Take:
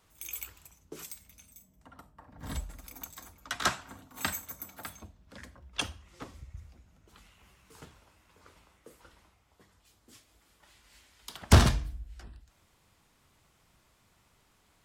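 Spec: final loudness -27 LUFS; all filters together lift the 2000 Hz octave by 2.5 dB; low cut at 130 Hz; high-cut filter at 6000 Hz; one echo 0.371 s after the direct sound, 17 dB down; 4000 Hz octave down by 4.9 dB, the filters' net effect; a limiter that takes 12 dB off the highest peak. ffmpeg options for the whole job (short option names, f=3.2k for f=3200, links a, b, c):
-af "highpass=130,lowpass=6k,equalizer=f=2k:t=o:g=5,equalizer=f=4k:t=o:g=-7.5,alimiter=limit=-20dB:level=0:latency=1,aecho=1:1:371:0.141,volume=13.5dB"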